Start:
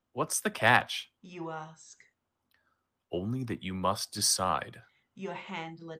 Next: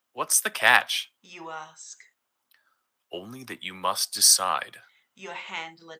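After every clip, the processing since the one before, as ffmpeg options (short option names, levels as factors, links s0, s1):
-af "highpass=f=1500:p=1,highshelf=f=11000:g=7,volume=2.66"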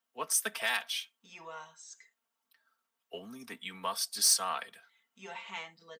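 -filter_complex "[0:a]aecho=1:1:4.4:0.72,acrossover=split=2700[s0][s1];[s0]alimiter=limit=0.2:level=0:latency=1:release=335[s2];[s2][s1]amix=inputs=2:normalize=0,asoftclip=type=tanh:threshold=0.473,volume=0.376"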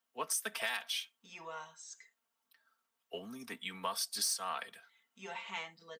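-af "acompressor=threshold=0.0251:ratio=6"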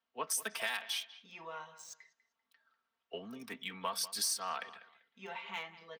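-filter_complex "[0:a]acrossover=split=5000[s0][s1];[s0]aecho=1:1:195|390:0.15|0.0359[s2];[s1]aeval=exprs='val(0)*gte(abs(val(0)),0.00211)':c=same[s3];[s2][s3]amix=inputs=2:normalize=0"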